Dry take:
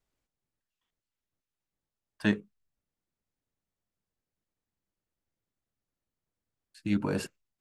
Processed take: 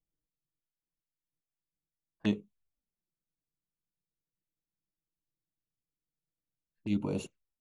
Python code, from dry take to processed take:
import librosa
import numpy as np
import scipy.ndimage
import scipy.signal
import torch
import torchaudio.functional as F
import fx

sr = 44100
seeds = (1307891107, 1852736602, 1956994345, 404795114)

y = fx.env_lowpass(x, sr, base_hz=380.0, full_db=-30.5)
y = fx.env_flanger(y, sr, rest_ms=6.3, full_db=-31.5)
y = y * 10.0 ** (-2.5 / 20.0)